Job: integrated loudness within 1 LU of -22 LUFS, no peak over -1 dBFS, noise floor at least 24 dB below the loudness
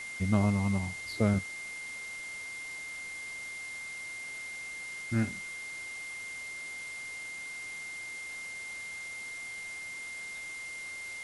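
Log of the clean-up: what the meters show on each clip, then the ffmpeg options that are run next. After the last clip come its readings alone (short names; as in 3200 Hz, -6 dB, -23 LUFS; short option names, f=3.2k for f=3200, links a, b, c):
steady tone 2100 Hz; tone level -39 dBFS; noise floor -42 dBFS; noise floor target -60 dBFS; loudness -35.5 LUFS; peak -12.5 dBFS; loudness target -22.0 LUFS
-> -af "bandreject=f=2.1k:w=30"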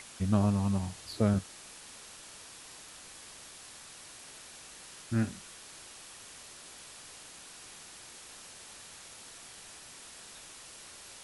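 steady tone none; noise floor -51 dBFS; noise floor target -62 dBFS
-> -af "afftdn=nr=11:nf=-51"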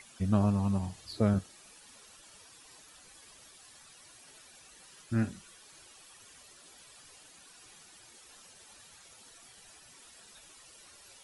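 noise floor -56 dBFS; loudness -31.0 LUFS; peak -13.0 dBFS; loudness target -22.0 LUFS
-> -af "volume=9dB"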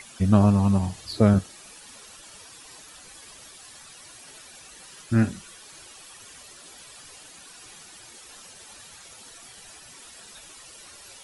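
loudness -22.0 LUFS; peak -4.0 dBFS; noise floor -47 dBFS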